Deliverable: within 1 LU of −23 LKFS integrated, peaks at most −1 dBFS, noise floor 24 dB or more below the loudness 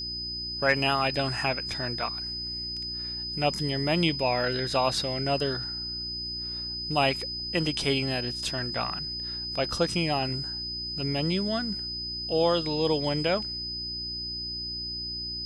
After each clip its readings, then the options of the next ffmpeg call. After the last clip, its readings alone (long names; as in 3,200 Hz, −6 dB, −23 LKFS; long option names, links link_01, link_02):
mains hum 60 Hz; hum harmonics up to 360 Hz; level of the hum −42 dBFS; interfering tone 5,000 Hz; level of the tone −32 dBFS; integrated loudness −28.0 LKFS; sample peak −10.0 dBFS; target loudness −23.0 LKFS
→ -af "bandreject=frequency=60:width_type=h:width=4,bandreject=frequency=120:width_type=h:width=4,bandreject=frequency=180:width_type=h:width=4,bandreject=frequency=240:width_type=h:width=4,bandreject=frequency=300:width_type=h:width=4,bandreject=frequency=360:width_type=h:width=4"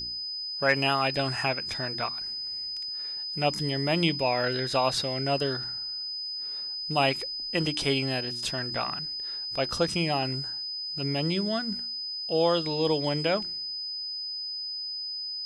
mains hum none found; interfering tone 5,000 Hz; level of the tone −32 dBFS
→ -af "bandreject=frequency=5000:width=30"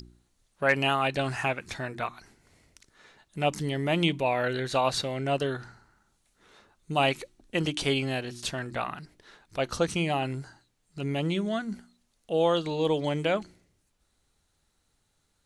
interfering tone none found; integrated loudness −29.0 LKFS; sample peak −11.0 dBFS; target loudness −23.0 LKFS
→ -af "volume=6dB"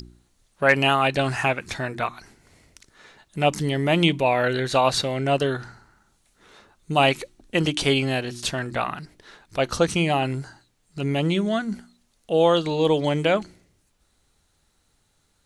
integrated loudness −23.0 LKFS; sample peak −5.0 dBFS; background noise floor −67 dBFS